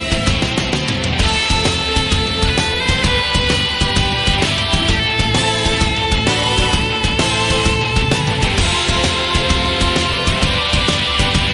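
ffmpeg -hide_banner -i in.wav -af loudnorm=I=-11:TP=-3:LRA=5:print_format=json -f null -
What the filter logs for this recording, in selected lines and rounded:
"input_i" : "-14.9",
"input_tp" : "-3.2",
"input_lra" : "0.2",
"input_thresh" : "-24.9",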